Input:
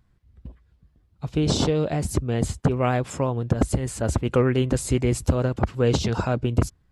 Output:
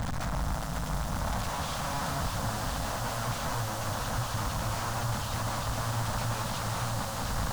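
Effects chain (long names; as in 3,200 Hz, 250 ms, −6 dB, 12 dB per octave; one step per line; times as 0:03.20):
linear delta modulator 64 kbit/s, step −17 dBFS
low-pass filter 3,500 Hz 24 dB per octave
parametric band 150 Hz −5 dB 2.9 octaves
mains-hum notches 60/120/180/240/300/360/420 Hz
tuned comb filter 200 Hz, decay 0.26 s, harmonics all, mix 40%
wrap-around overflow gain 29.5 dB
phaser with its sweep stopped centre 970 Hz, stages 4
on a send: echo that builds up and dies away 97 ms, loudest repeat 5, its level −14 dB
on the sum: wrong playback speed 48 kHz file played as 44.1 kHz
slew-rate limiting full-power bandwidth 48 Hz
level +4.5 dB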